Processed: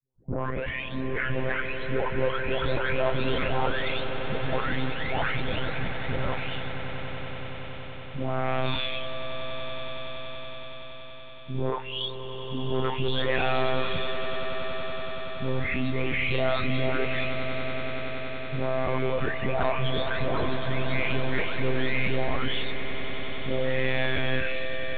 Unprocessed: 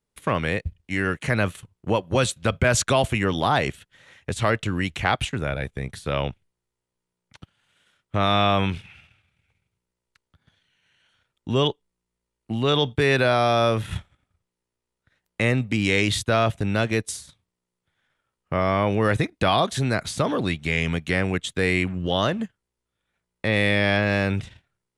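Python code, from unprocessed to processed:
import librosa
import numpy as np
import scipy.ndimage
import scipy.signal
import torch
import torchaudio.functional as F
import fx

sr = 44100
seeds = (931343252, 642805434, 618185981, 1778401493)

y = fx.spec_delay(x, sr, highs='late', ms=918)
y = fx.notch(y, sr, hz=1200.0, q=15.0)
y = 10.0 ** (-22.0 / 20.0) * np.tanh(y / 10.0 ** (-22.0 / 20.0))
y = fx.lpc_monotone(y, sr, seeds[0], pitch_hz=130.0, order=16)
y = fx.echo_swell(y, sr, ms=94, loudest=8, wet_db=-14.0)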